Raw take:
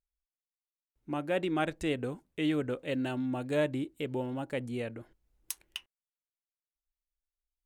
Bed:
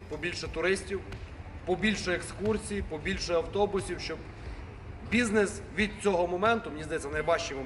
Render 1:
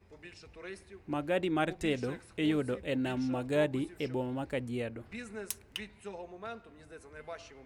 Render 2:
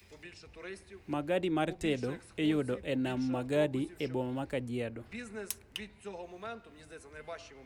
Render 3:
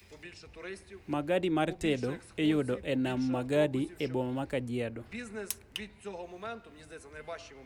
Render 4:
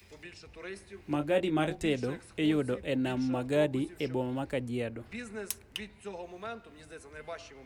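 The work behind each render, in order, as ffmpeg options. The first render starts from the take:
-filter_complex "[1:a]volume=-17dB[a];[0:a][a]amix=inputs=2:normalize=0"
-filter_complex "[0:a]acrossover=split=260|1100|2100[a][b][c][d];[c]alimiter=level_in=14.5dB:limit=-24dB:level=0:latency=1:release=462,volume=-14.5dB[e];[d]acompressor=mode=upward:threshold=-52dB:ratio=2.5[f];[a][b][e][f]amix=inputs=4:normalize=0"
-af "volume=2dB"
-filter_complex "[0:a]asettb=1/sr,asplit=3[a][b][c];[a]atrim=end=0.744[d];[b]atrim=start=0.74:end=1.82,asetpts=PTS-STARTPTS,afade=t=in:d=0.004:c=qsin,afade=t=out:st=1.076:d=0.004:c=qsin,asplit=2[e][f];[f]adelay=20,volume=-7dB[g];[e][g]amix=inputs=2:normalize=0,atrim=end_sample=47628[h];[c]atrim=start=1.816[i];[d][h]acrossfade=d=0.004:c1=hsin:c2=qsin[j];[j][i]acrossfade=d=0.004:c1=qsin:c2=hsin"

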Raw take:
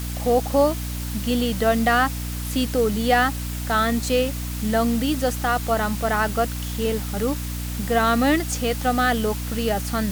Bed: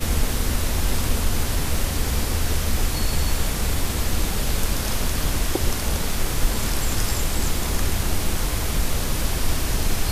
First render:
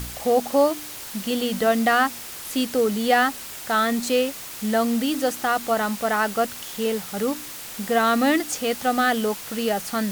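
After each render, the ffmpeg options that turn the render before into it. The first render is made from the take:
-af "bandreject=f=60:t=h:w=4,bandreject=f=120:t=h:w=4,bandreject=f=180:t=h:w=4,bandreject=f=240:t=h:w=4,bandreject=f=300:t=h:w=4"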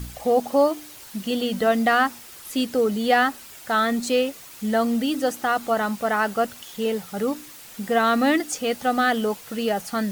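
-af "afftdn=nr=8:nf=-37"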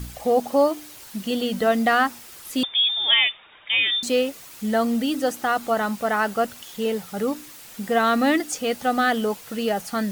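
-filter_complex "[0:a]asettb=1/sr,asplit=3[a][b][c];[a]atrim=end=2.634[d];[b]atrim=start=2.63:end=4.03,asetpts=PTS-STARTPTS,afade=t=in:d=0.004:c=qsin,afade=t=out:st=1.396:d=0.004:c=qsin,lowpass=f=3.2k:t=q:w=0.5098,lowpass=f=3.2k:t=q:w=0.6013,lowpass=f=3.2k:t=q:w=0.9,lowpass=f=3.2k:t=q:w=2.563,afreqshift=-3800[e];[c]atrim=start=4.026[f];[d][e]acrossfade=d=0.004:c1=hsin:c2=qsin[g];[g][f]acrossfade=d=0.004:c1=qsin:c2=hsin"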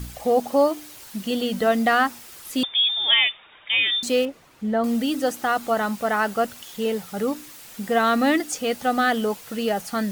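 -filter_complex "[0:a]asettb=1/sr,asplit=3[a][b][c];[a]atrim=end=4.254[d];[b]atrim=start=4.25:end=4.84,asetpts=PTS-STARTPTS,afade=t=in:d=0.004:c=qsin,afade=t=out:st=0.586:d=0.004:c=qsin,lowpass=f=1.1k:p=1[e];[c]atrim=start=4.836[f];[d][e]acrossfade=d=0.004:c1=hsin:c2=qsin[g];[g][f]acrossfade=d=0.004:c1=qsin:c2=hsin"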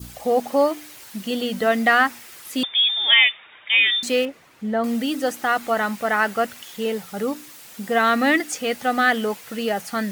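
-af "highpass=f=100:p=1,adynamicequalizer=threshold=0.0158:dfrequency=2000:dqfactor=1.6:tfrequency=2000:tqfactor=1.6:attack=5:release=100:ratio=0.375:range=3.5:mode=boostabove:tftype=bell"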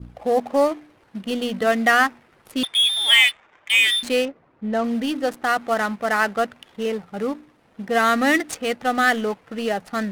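-af "aexciter=amount=3.3:drive=4.5:freq=9.2k,adynamicsmooth=sensitivity=6:basefreq=750"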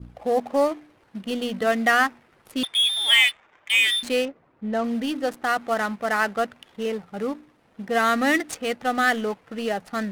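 -af "volume=-2.5dB"

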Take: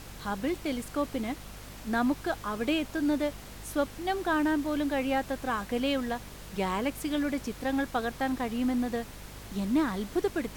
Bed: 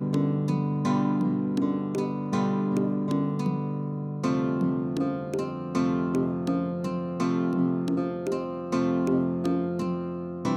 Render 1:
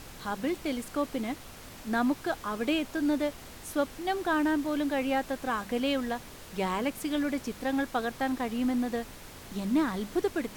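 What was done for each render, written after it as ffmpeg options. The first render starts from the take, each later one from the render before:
-af "bandreject=f=50:t=h:w=4,bandreject=f=100:t=h:w=4,bandreject=f=150:t=h:w=4,bandreject=f=200:t=h:w=4"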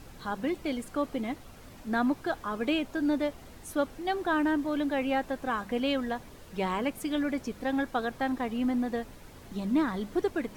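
-af "afftdn=nr=8:nf=-47"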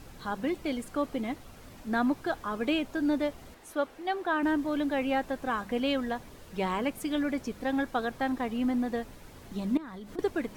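-filter_complex "[0:a]asettb=1/sr,asplit=3[a][b][c];[a]atrim=end=3.544[d];[b]atrim=start=3.54:end=4.43,asetpts=PTS-STARTPTS,afade=t=in:d=0.004:c=qsin,afade=t=out:st=0.886:d=0.004:c=qsin,bass=f=250:g=-13,treble=f=4k:g=-6[e];[c]atrim=start=4.426[f];[d][e]acrossfade=d=0.004:c1=hsin:c2=qsin[g];[g][f]acrossfade=d=0.004:c1=qsin:c2=hsin,asettb=1/sr,asplit=3[h][i][j];[h]atrim=end=9.774[k];[i]atrim=start=9.77:end=10.19,asetpts=PTS-STARTPTS,afade=t=in:d=0.004:c=qsin,afade=t=out:st=0.416:d=0.004:c=qsin,acompressor=threshold=-39dB:ratio=10:attack=3.2:release=140:knee=1:detection=peak[l];[j]atrim=start=10.186[m];[k][l]acrossfade=d=0.004:c1=hsin:c2=qsin[n];[n][m]acrossfade=d=0.004:c1=qsin:c2=hsin"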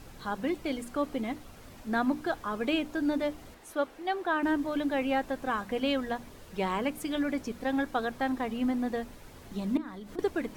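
-af "bandreject=f=60:t=h:w=6,bandreject=f=120:t=h:w=6,bandreject=f=180:t=h:w=6,bandreject=f=240:t=h:w=6,bandreject=f=300:t=h:w=6"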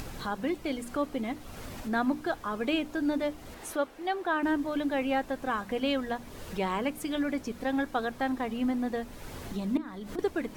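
-af "acompressor=mode=upward:threshold=-31dB:ratio=2.5"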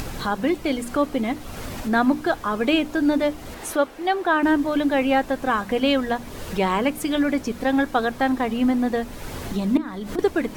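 -af "volume=9dB"

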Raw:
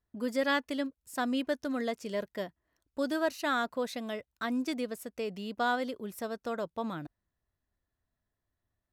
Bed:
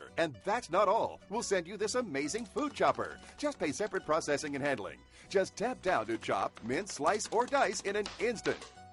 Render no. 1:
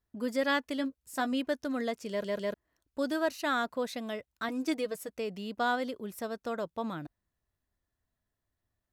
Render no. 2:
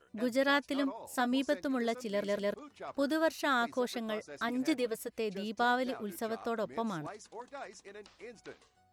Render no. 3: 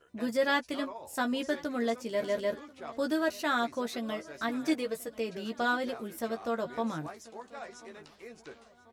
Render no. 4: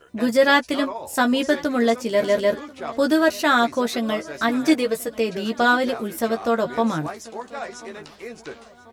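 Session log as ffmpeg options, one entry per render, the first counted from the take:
-filter_complex "[0:a]asettb=1/sr,asplit=3[a][b][c];[a]atrim=end=0.784[d];[b]atrim=start=0.78:end=1.33,asetpts=PTS-STARTPTS,afade=t=in:d=0.004:c=qsin,afade=t=out:st=0.546:d=0.004:c=qsin,asplit=2[e][f];[f]adelay=15,volume=-8.5dB[g];[e][g]amix=inputs=2:normalize=0,atrim=end_sample=24255[h];[c]atrim=start=1.326[i];[d][h]acrossfade=d=0.004:c1=hsin:c2=qsin[j];[j][i]acrossfade=d=0.004:c1=qsin:c2=hsin,asettb=1/sr,asplit=3[k][l][m];[k]atrim=end=4.484[n];[l]atrim=start=4.48:end=5.1,asetpts=PTS-STARTPTS,afade=t=in:d=0.004:c=qsin,afade=t=out:st=0.616:d=0.004:c=qsin,aecho=1:1:6.4:0.66,atrim=end_sample=27342[o];[m]atrim=start=5.096[p];[n][o]acrossfade=d=0.004:c1=hsin:c2=qsin[q];[q][p]acrossfade=d=0.004:c1=qsin:c2=hsin,asplit=4[r][s][t][u];[r]atrim=end=2.242[v];[s]atrim=start=2.088:end=2.242[w];[t]atrim=start=2.088:end=2.242[x];[u]atrim=start=2.538[y];[v][w]acrossfade=d=0.004:c1=hsin:c2=hsin[z];[z][x]acrossfade=d=0.004:c1=hsin:c2=hsin[aa];[aa][y]acrossfade=d=0.004:c1=hsin:c2=hsin"
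-filter_complex "[1:a]volume=-16dB[a];[0:a][a]amix=inputs=2:normalize=0"
-filter_complex "[0:a]asplit=2[a][b];[b]adelay=13,volume=-5dB[c];[a][c]amix=inputs=2:normalize=0,aecho=1:1:1039|2078|3117:0.0841|0.0379|0.017"
-af "volume=11.5dB"

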